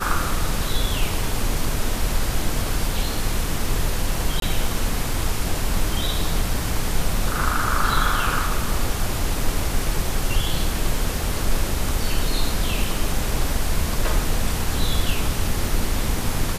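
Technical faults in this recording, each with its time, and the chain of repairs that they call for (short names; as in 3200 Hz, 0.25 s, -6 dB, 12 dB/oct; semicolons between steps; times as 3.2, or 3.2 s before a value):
4.4–4.42 gap 22 ms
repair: interpolate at 4.4, 22 ms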